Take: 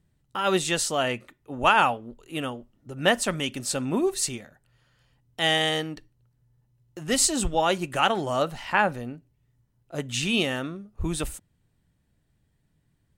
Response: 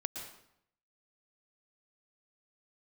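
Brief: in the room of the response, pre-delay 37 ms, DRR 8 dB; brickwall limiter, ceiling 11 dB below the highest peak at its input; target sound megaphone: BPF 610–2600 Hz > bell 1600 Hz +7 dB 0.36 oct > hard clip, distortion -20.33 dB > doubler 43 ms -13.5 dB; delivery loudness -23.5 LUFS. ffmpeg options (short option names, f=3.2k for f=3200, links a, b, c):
-filter_complex "[0:a]alimiter=limit=-17dB:level=0:latency=1,asplit=2[a][b];[1:a]atrim=start_sample=2205,adelay=37[c];[b][c]afir=irnorm=-1:irlink=0,volume=-8.5dB[d];[a][d]amix=inputs=2:normalize=0,highpass=610,lowpass=2.6k,equalizer=f=1.6k:t=o:w=0.36:g=7,asoftclip=type=hard:threshold=-20dB,asplit=2[e][f];[f]adelay=43,volume=-13.5dB[g];[e][g]amix=inputs=2:normalize=0,volume=8dB"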